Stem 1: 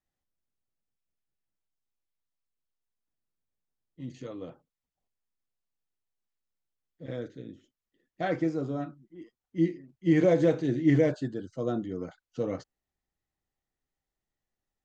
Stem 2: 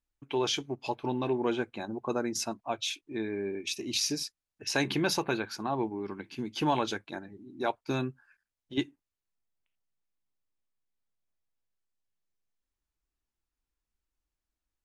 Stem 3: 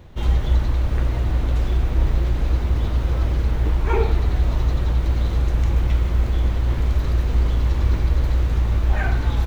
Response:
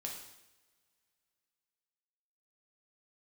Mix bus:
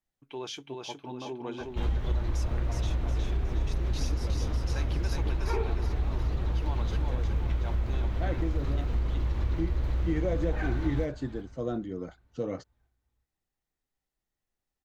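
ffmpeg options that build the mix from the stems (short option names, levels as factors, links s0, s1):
-filter_complex "[0:a]volume=0.891[s0];[1:a]volume=0.355,asplit=2[s1][s2];[s2]volume=0.708[s3];[2:a]highshelf=f=6400:g=-8.5,adelay=1600,volume=0.631,asplit=2[s4][s5];[s5]volume=0.112[s6];[s3][s6]amix=inputs=2:normalize=0,aecho=0:1:365|730|1095|1460|1825|2190:1|0.44|0.194|0.0852|0.0375|0.0165[s7];[s0][s1][s4][s7]amix=inputs=4:normalize=0,acompressor=threshold=0.0501:ratio=3"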